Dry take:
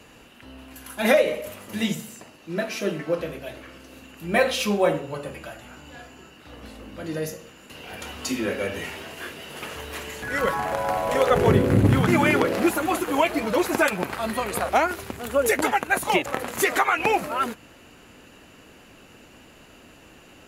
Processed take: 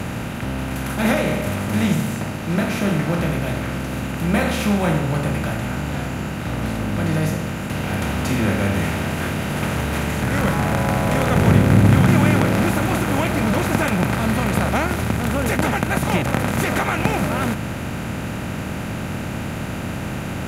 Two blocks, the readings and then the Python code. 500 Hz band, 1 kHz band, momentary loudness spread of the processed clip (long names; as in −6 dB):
−0.5 dB, +1.5 dB, 11 LU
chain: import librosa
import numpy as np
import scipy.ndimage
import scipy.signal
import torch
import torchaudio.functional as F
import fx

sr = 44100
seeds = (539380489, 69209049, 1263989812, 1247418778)

y = fx.bin_compress(x, sr, power=0.4)
y = fx.low_shelf_res(y, sr, hz=280.0, db=9.0, q=1.5)
y = y * 10.0 ** (-7.0 / 20.0)